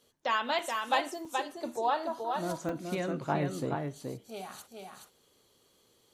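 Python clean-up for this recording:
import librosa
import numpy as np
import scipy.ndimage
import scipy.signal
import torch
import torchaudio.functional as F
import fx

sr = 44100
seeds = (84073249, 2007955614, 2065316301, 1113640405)

y = fx.fix_declip(x, sr, threshold_db=-16.0)
y = fx.fix_interpolate(y, sr, at_s=(0.59, 1.25, 2.69), length_ms=2.6)
y = fx.fix_echo_inverse(y, sr, delay_ms=425, level_db=-4.5)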